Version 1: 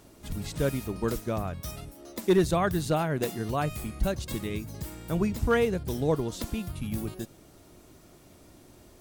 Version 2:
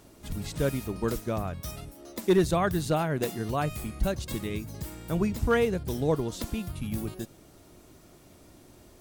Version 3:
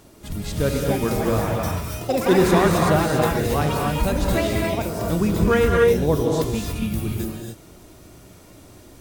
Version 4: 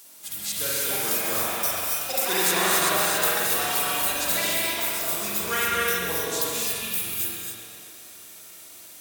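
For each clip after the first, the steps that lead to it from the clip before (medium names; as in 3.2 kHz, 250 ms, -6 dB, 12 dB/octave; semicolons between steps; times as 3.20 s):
no audible change
ever faster or slower copies 474 ms, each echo +6 st, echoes 2, each echo -6 dB; gated-style reverb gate 310 ms rising, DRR -1 dB; trim +4.5 dB
differentiator; spring tank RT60 1.6 s, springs 44 ms, chirp 30 ms, DRR -3.5 dB; modulated delay 127 ms, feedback 77%, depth 62 cents, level -14 dB; trim +8 dB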